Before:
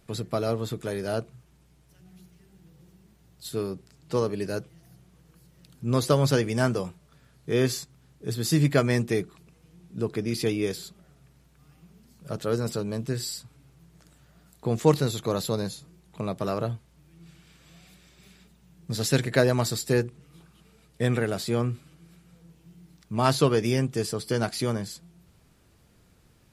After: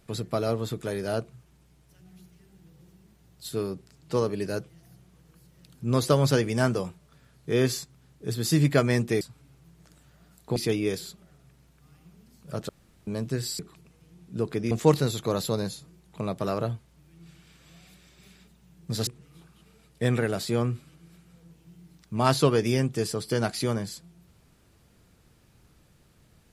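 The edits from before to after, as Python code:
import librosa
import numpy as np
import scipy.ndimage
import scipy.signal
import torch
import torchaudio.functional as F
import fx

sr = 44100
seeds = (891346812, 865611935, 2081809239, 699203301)

y = fx.edit(x, sr, fx.swap(start_s=9.21, length_s=1.12, other_s=13.36, other_length_s=1.35),
    fx.room_tone_fill(start_s=12.46, length_s=0.38),
    fx.cut(start_s=19.07, length_s=0.99), tone=tone)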